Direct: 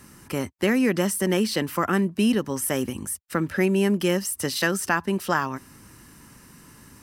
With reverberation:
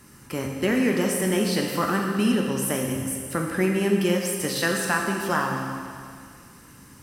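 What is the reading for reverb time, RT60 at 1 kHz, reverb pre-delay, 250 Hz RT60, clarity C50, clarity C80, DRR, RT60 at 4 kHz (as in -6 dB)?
2.2 s, 2.2 s, 15 ms, 2.2 s, 2.5 dB, 3.5 dB, 0.5 dB, 2.2 s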